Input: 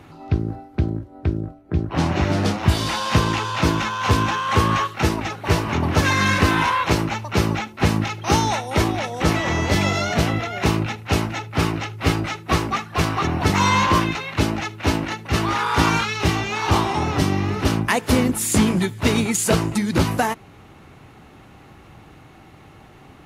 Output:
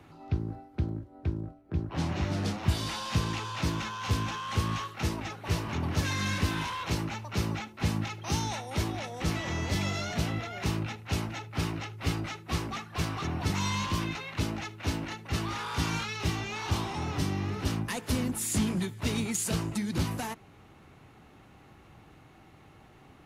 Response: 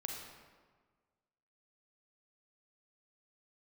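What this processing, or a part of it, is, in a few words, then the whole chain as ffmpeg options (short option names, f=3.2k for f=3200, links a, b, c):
one-band saturation: -filter_complex "[0:a]acrossover=split=240|2800[a][b][c];[b]asoftclip=type=tanh:threshold=-25.5dB[d];[a][d][c]amix=inputs=3:normalize=0,volume=-9dB"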